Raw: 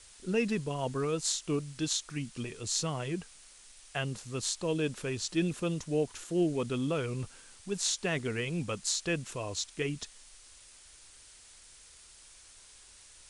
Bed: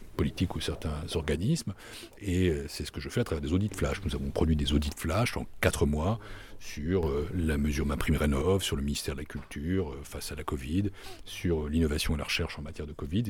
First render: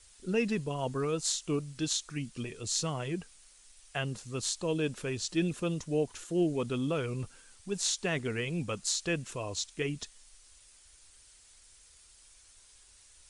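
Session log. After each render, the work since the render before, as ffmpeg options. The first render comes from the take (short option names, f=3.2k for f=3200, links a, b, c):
-af "afftdn=nr=6:nf=-56"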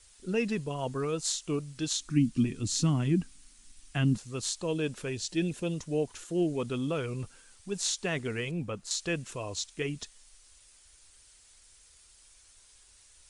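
-filter_complex "[0:a]asettb=1/sr,asplit=3[a][b][c];[a]atrim=end=2.004[d];[b]atrim=start=2:end=4.18,asetpts=PTS-STARTPTS,afade=t=in:d=0.004:c=qsin,afade=t=out:st=2.176:d=0.004:c=qsin,lowshelf=f=360:t=q:w=3:g=8.5[e];[c]atrim=start=4.176[f];[d][e]acrossfade=d=0.004:c1=hsin:c2=qsin[g];[g][f]acrossfade=d=0.004:c1=qsin:c2=hsin,asettb=1/sr,asplit=3[h][i][j];[h]atrim=end=5.084[k];[i]atrim=start=5.08:end=5.74,asetpts=PTS-STARTPTS,afade=t=in:d=0.004:c=qsin,afade=t=out:st=0.656:d=0.004:c=qsin,equalizer=f=1.2k:t=o:w=0.26:g=-13.5[l];[j]atrim=start=5.736[m];[k][l]acrossfade=d=0.004:c1=hsin:c2=qsin[n];[n][m]acrossfade=d=0.004:c1=qsin:c2=hsin,asettb=1/sr,asplit=3[o][p][q];[o]atrim=end=8.514[r];[p]atrim=start=8.51:end=8.91,asetpts=PTS-STARTPTS,afade=t=in:d=0.004:c=qsin,afade=t=out:st=0.396:d=0.004:c=qsin,equalizer=f=7.6k:t=o:w=2.9:g=-10.5[s];[q]atrim=start=8.906[t];[r][s]acrossfade=d=0.004:c1=hsin:c2=qsin[u];[u][t]acrossfade=d=0.004:c1=qsin:c2=hsin"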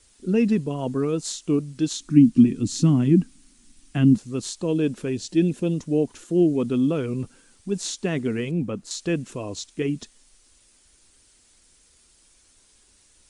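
-af "equalizer=f=250:t=o:w=1.7:g=13"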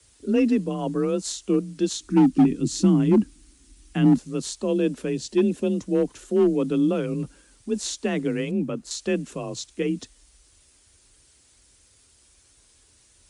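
-filter_complex "[0:a]acrossover=split=150|1500[a][b][c];[b]asoftclip=type=hard:threshold=-14dB[d];[a][d][c]amix=inputs=3:normalize=0,afreqshift=31"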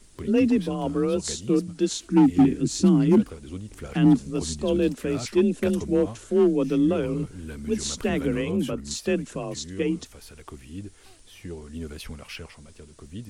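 -filter_complex "[1:a]volume=-8.5dB[a];[0:a][a]amix=inputs=2:normalize=0"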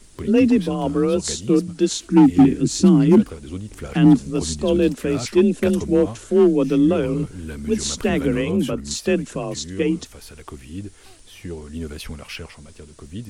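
-af "volume=5dB"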